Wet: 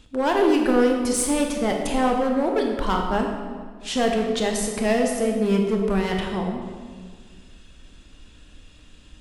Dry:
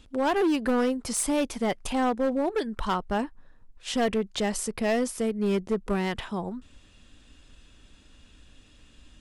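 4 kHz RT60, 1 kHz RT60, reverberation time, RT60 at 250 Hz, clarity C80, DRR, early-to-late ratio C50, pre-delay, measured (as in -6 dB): 1.1 s, 1.6 s, 1.7 s, 2.1 s, 5.5 dB, 1.5 dB, 4.0 dB, 20 ms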